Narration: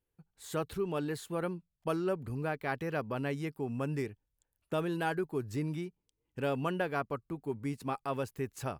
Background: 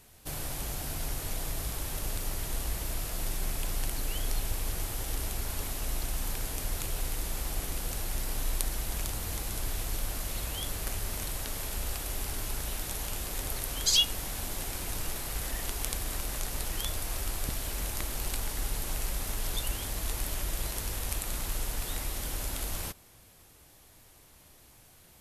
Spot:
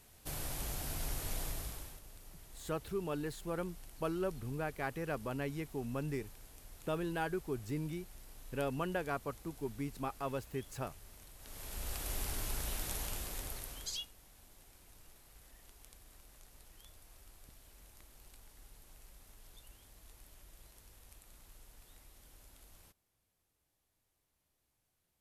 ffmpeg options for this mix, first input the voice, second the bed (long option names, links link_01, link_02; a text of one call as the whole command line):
ffmpeg -i stem1.wav -i stem2.wav -filter_complex "[0:a]adelay=2150,volume=-4dB[link_01];[1:a]volume=12.5dB,afade=type=out:start_time=1.41:duration=0.6:silence=0.149624,afade=type=in:start_time=11.38:duration=0.74:silence=0.141254,afade=type=out:start_time=12.95:duration=1.16:silence=0.0891251[link_02];[link_01][link_02]amix=inputs=2:normalize=0" out.wav